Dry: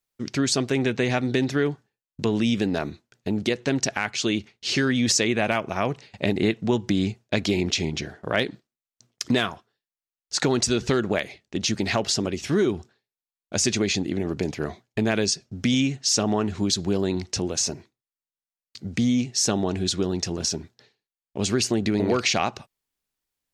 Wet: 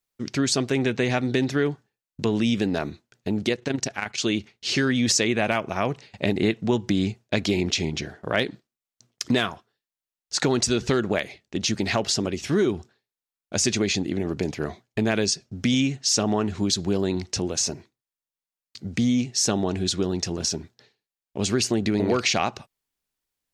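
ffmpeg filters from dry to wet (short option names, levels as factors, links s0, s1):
-filter_complex "[0:a]asettb=1/sr,asplit=3[s0][s1][s2];[s0]atrim=end=3.554[s3];[s1]atrim=start=3.55:end=4.18,asetpts=PTS-STARTPTS,afade=t=in:d=0.004:c=qsin,afade=t=out:st=0.626:d=0.004:c=qsin,tremolo=f=25:d=0.667[s4];[s2]atrim=start=4.176[s5];[s3][s4]acrossfade=d=0.004:c1=hsin:c2=qsin[s6];[s6][s5]acrossfade=d=0.004:c1=qsin:c2=hsin"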